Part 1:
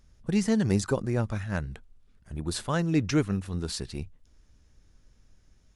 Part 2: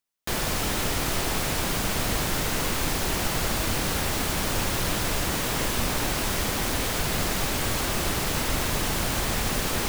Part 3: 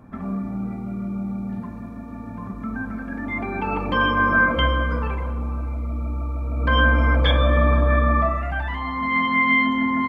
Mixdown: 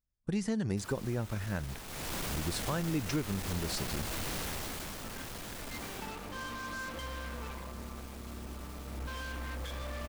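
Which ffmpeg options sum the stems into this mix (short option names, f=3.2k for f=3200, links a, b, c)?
-filter_complex "[0:a]agate=range=-28dB:threshold=-47dB:ratio=16:detection=peak,volume=-1.5dB[a];[1:a]volume=28dB,asoftclip=hard,volume=-28dB,adelay=500,volume=-6dB,afade=t=in:st=1.85:d=0.3:silence=0.334965,afade=t=out:st=4.37:d=0.63:silence=0.446684,afade=t=out:st=5.93:d=0.22:silence=0.398107[b];[2:a]alimiter=limit=-15.5dB:level=0:latency=1,acrusher=bits=3:mix=0:aa=0.5,adelay=2400,volume=-18dB[c];[a][b][c]amix=inputs=3:normalize=0,acompressor=threshold=-31dB:ratio=3"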